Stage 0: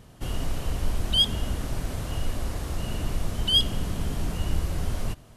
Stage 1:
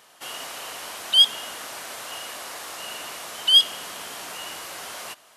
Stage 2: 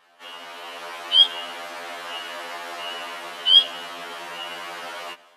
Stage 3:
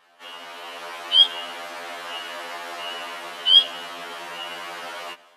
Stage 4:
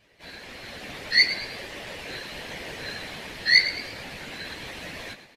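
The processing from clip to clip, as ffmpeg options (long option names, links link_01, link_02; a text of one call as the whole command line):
ffmpeg -i in.wav -af "highpass=880,volume=6.5dB" out.wav
ffmpeg -i in.wav -filter_complex "[0:a]acrossover=split=180 3800:gain=0.0708 1 0.158[link_01][link_02][link_03];[link_01][link_02][link_03]amix=inputs=3:normalize=0,dynaudnorm=framelen=440:gausssize=3:maxgain=7dB,afftfilt=real='re*2*eq(mod(b,4),0)':imag='im*2*eq(mod(b,4),0)':win_size=2048:overlap=0.75" out.wav
ffmpeg -i in.wav -af anull out.wav
ffmpeg -i in.wav -filter_complex "[0:a]aeval=exprs='val(0)*sin(2*PI*1200*n/s)':channel_layout=same,afftfilt=real='hypot(re,im)*cos(2*PI*random(0))':imag='hypot(re,im)*sin(2*PI*random(1))':win_size=512:overlap=0.75,asplit=5[link_01][link_02][link_03][link_04][link_05];[link_02]adelay=110,afreqshift=81,volume=-12.5dB[link_06];[link_03]adelay=220,afreqshift=162,volume=-20.2dB[link_07];[link_04]adelay=330,afreqshift=243,volume=-28dB[link_08];[link_05]adelay=440,afreqshift=324,volume=-35.7dB[link_09];[link_01][link_06][link_07][link_08][link_09]amix=inputs=5:normalize=0,volume=5.5dB" out.wav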